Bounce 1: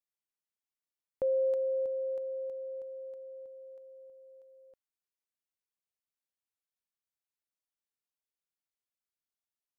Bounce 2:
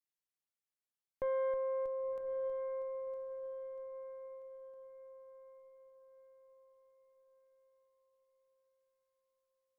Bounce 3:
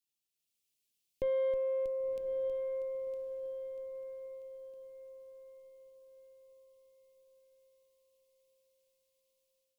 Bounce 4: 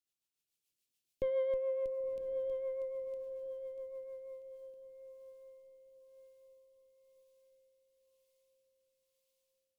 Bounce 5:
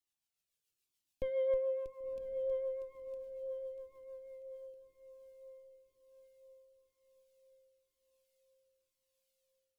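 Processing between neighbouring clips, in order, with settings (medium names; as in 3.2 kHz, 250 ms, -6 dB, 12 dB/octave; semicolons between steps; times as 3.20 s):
hum notches 50/100/150/200/250 Hz; valve stage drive 28 dB, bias 0.6; echo that smears into a reverb 1066 ms, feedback 43%, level -9.5 dB; trim -1.5 dB
FFT filter 410 Hz 0 dB, 1.4 kHz -21 dB, 2.6 kHz +5 dB; level rider gain up to 7.5 dB
rotary cabinet horn 7 Hz, later 1 Hz, at 3.91 s
Shepard-style flanger falling 1 Hz; trim +3.5 dB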